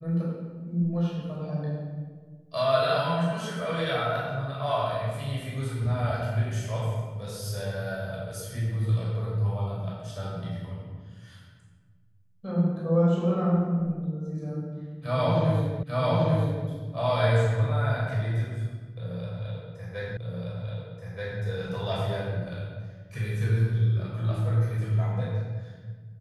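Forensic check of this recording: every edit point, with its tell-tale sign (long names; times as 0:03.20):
0:15.83: the same again, the last 0.84 s
0:20.17: the same again, the last 1.23 s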